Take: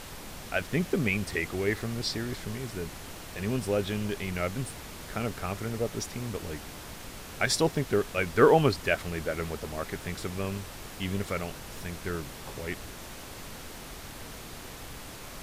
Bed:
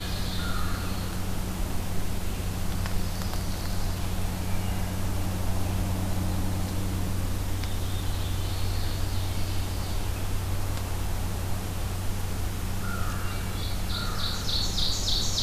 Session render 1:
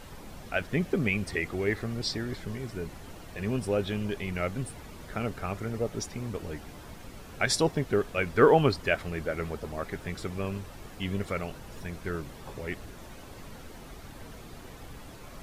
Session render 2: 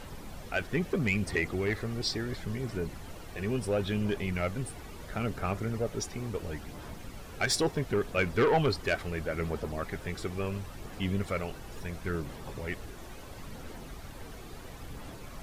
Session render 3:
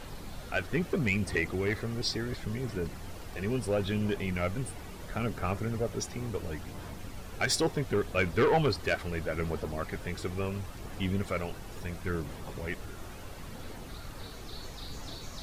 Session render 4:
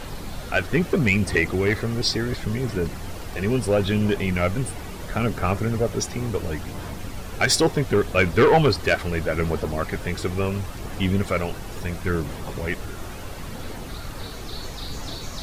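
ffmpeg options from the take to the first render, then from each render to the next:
ffmpeg -i in.wav -af "afftdn=noise_reduction=9:noise_floor=-44" out.wav
ffmpeg -i in.wav -af "asoftclip=type=tanh:threshold=-19.5dB,aphaser=in_gain=1:out_gain=1:delay=2.7:decay=0.25:speed=0.73:type=sinusoidal" out.wav
ffmpeg -i in.wav -i bed.wav -filter_complex "[1:a]volume=-19.5dB[link_01];[0:a][link_01]amix=inputs=2:normalize=0" out.wav
ffmpeg -i in.wav -af "volume=9dB" out.wav

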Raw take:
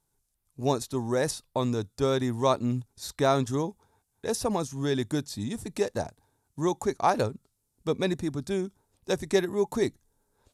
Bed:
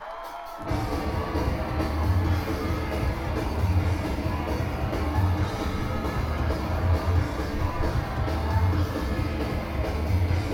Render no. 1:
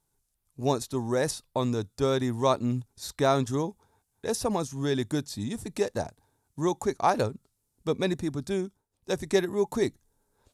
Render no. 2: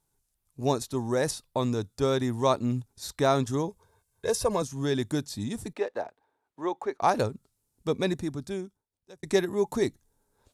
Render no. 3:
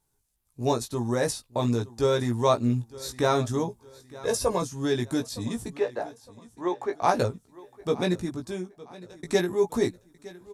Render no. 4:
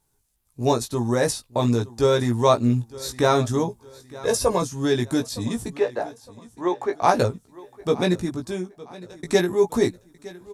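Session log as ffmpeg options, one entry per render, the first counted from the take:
ffmpeg -i in.wav -filter_complex "[0:a]asplit=2[link_01][link_02];[link_01]atrim=end=8.89,asetpts=PTS-STARTPTS,afade=type=out:start_time=8.6:duration=0.29:silence=0.158489[link_03];[link_02]atrim=start=8.89,asetpts=PTS-STARTPTS,afade=type=in:duration=0.29:silence=0.158489[link_04];[link_03][link_04]concat=n=2:v=0:a=1" out.wav
ffmpeg -i in.wav -filter_complex "[0:a]asettb=1/sr,asplit=3[link_01][link_02][link_03];[link_01]atrim=end=3.684[link_04];[link_02]atrim=start=3.68:end=4.62,asetpts=PTS-STARTPTS,afade=type=in:duration=0.004:curve=qsin,afade=type=out:start_time=0.936:duration=0.004:curve=qsin,aecho=1:1:1.9:0.65,atrim=end_sample=41454[link_05];[link_03]atrim=start=4.616[link_06];[link_04][link_05]acrossfade=duration=0.004:curve1=hsin:curve2=qsin[link_07];[link_07][link_06]acrossfade=duration=0.004:curve1=qsin:curve2=hsin,asettb=1/sr,asplit=3[link_08][link_09][link_10];[link_08]atrim=end=5.734[link_11];[link_09]atrim=start=5.73:end=7.02,asetpts=PTS-STARTPTS,afade=type=in:duration=0.004:curve=qsin,afade=type=out:start_time=1.286:duration=0.004:curve=qsin,acrossover=split=320 3300:gain=0.0708 1 0.0891[link_12][link_13][link_14];[link_12][link_13][link_14]amix=inputs=3:normalize=0[link_15];[link_10]atrim=start=7.016[link_16];[link_11][link_15]acrossfade=duration=0.004:curve1=hsin:curve2=qsin[link_17];[link_17][link_16]acrossfade=duration=0.004:curve1=qsin:curve2=hsin,asplit=2[link_18][link_19];[link_18]atrim=end=9.23,asetpts=PTS-STARTPTS,afade=type=out:start_time=8.09:duration=1.14[link_20];[link_19]atrim=start=9.23,asetpts=PTS-STARTPTS,afade=type=in:duration=0.004:curve=hsin[link_21];[link_20][link_21]concat=n=2:v=0:a=1" out.wav
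ffmpeg -i in.wav -filter_complex "[0:a]asplit=2[link_01][link_02];[link_02]adelay=17,volume=-4dB[link_03];[link_01][link_03]amix=inputs=2:normalize=0,aecho=1:1:912|1824|2736:0.106|0.0392|0.0145" out.wav
ffmpeg -i in.wav -af "volume=4.5dB" out.wav

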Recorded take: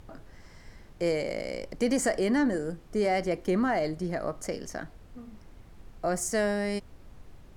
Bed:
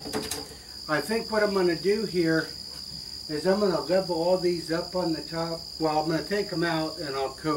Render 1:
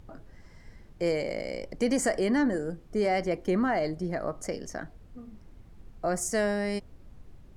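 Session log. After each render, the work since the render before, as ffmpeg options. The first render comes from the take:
ffmpeg -i in.wav -af "afftdn=noise_reduction=6:noise_floor=-52" out.wav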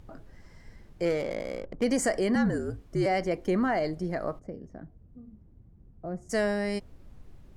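ffmpeg -i in.wav -filter_complex "[0:a]asettb=1/sr,asplit=3[link_01][link_02][link_03];[link_01]atrim=end=1.054[link_04];[link_02]atrim=start=1.05:end=1.84,asetpts=PTS-STARTPTS,afade=type=in:duration=0.004:curve=qsin,afade=type=out:start_time=0.786:duration=0.004:curve=qsin,adynamicsmooth=sensitivity=6:basefreq=650[link_05];[link_03]atrim=start=1.836[link_06];[link_04][link_05]acrossfade=duration=0.004:curve1=hsin:curve2=qsin[link_07];[link_07][link_06]acrossfade=duration=0.004:curve1=qsin:curve2=hsin,asettb=1/sr,asplit=3[link_08][link_09][link_10];[link_08]atrim=end=2.354[link_11];[link_09]atrim=start=2.35:end=3.06,asetpts=PTS-STARTPTS,afade=type=in:duration=0.004:curve=qsin,afade=type=out:start_time=0.706:duration=0.004:curve=qsin,afreqshift=-59[link_12];[link_10]atrim=start=3.056[link_13];[link_11][link_12]acrossfade=duration=0.004:curve1=hsin:curve2=qsin[link_14];[link_14][link_13]acrossfade=duration=0.004:curve1=qsin:curve2=hsin,asplit=3[link_15][link_16][link_17];[link_15]afade=type=out:start_time=4.38:duration=0.02[link_18];[link_16]bandpass=frequency=110:width_type=q:width=0.55,afade=type=in:start_time=4.38:duration=0.02,afade=type=out:start_time=6.29:duration=0.02[link_19];[link_17]afade=type=in:start_time=6.29:duration=0.02[link_20];[link_18][link_19][link_20]amix=inputs=3:normalize=0" out.wav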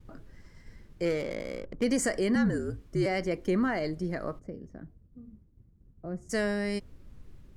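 ffmpeg -i in.wav -af "agate=range=-33dB:threshold=-48dB:ratio=3:detection=peak,equalizer=frequency=740:width=2:gain=-7" out.wav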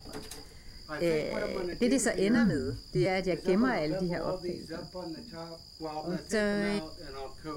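ffmpeg -i in.wav -i bed.wav -filter_complex "[1:a]volume=-12.5dB[link_01];[0:a][link_01]amix=inputs=2:normalize=0" out.wav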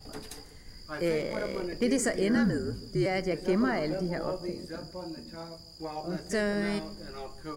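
ffmpeg -i in.wav -filter_complex "[0:a]asplit=2[link_01][link_02];[link_02]adelay=151,lowpass=frequency=830:poles=1,volume=-15dB,asplit=2[link_03][link_04];[link_04]adelay=151,lowpass=frequency=830:poles=1,volume=0.54,asplit=2[link_05][link_06];[link_06]adelay=151,lowpass=frequency=830:poles=1,volume=0.54,asplit=2[link_07][link_08];[link_08]adelay=151,lowpass=frequency=830:poles=1,volume=0.54,asplit=2[link_09][link_10];[link_10]adelay=151,lowpass=frequency=830:poles=1,volume=0.54[link_11];[link_01][link_03][link_05][link_07][link_09][link_11]amix=inputs=6:normalize=0" out.wav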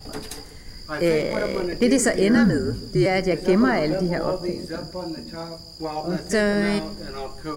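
ffmpeg -i in.wav -af "volume=8.5dB" out.wav

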